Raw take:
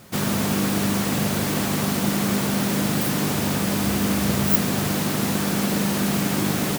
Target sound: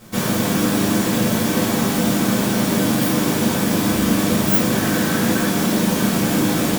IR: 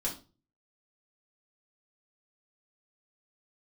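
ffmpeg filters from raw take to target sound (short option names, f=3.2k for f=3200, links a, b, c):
-filter_complex "[0:a]asettb=1/sr,asplit=3[a][b][c];[a]atrim=end=4.714[d];[b]atrim=start=4.71:end=5.47,asetpts=PTS-STARTPTS,afade=t=in:d=0.004:c=qsin,afade=t=out:st=0.756:d=0.004:c=qsin,equalizer=f=1.6k:w=3.7:g=6[e];[c]atrim=start=5.466[f];[d][e]acrossfade=d=0.004:c1=hsin:c2=qsin[g];[g][f]acrossfade=d=0.004:c1=qsin:c2=hsin[h];[1:a]atrim=start_sample=2205[i];[h][i]afir=irnorm=-1:irlink=0"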